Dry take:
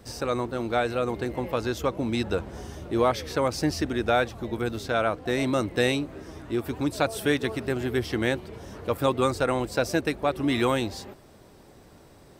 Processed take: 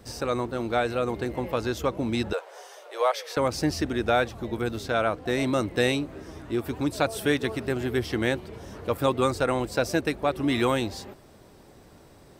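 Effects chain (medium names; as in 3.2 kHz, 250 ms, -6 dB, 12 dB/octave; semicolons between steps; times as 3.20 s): 2.33–3.37 s: steep high-pass 470 Hz 48 dB/octave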